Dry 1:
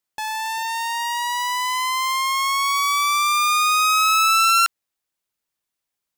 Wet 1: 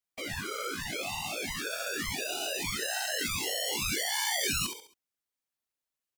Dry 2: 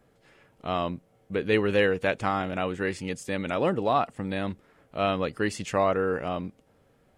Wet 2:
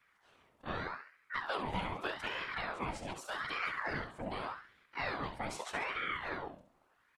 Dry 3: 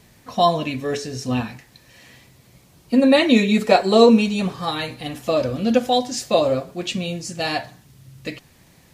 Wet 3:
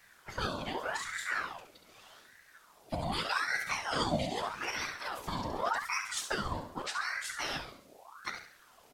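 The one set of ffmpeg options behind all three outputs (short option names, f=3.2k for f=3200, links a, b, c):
-filter_complex "[0:a]acrossover=split=140|3700[a][b][c];[b]acompressor=threshold=-26dB:ratio=6[d];[a][d][c]amix=inputs=3:normalize=0,afftfilt=real='hypot(re,im)*cos(2*PI*random(0))':imag='hypot(re,im)*sin(2*PI*random(1))':win_size=512:overlap=0.75,aecho=1:1:68|136|204|272:0.398|0.155|0.0606|0.0236,aeval=exprs='val(0)*sin(2*PI*1100*n/s+1100*0.65/0.83*sin(2*PI*0.83*n/s))':c=same"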